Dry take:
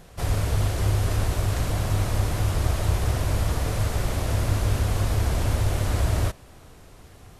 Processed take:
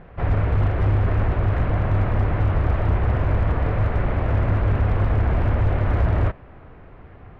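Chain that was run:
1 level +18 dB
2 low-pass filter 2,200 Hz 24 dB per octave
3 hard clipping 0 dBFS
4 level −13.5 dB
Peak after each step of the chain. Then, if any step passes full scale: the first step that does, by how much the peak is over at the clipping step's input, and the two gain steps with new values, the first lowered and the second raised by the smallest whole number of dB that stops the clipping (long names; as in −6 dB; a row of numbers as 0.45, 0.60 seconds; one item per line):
+8.5, +8.0, 0.0, −13.5 dBFS
step 1, 8.0 dB
step 1 +10 dB, step 4 −5.5 dB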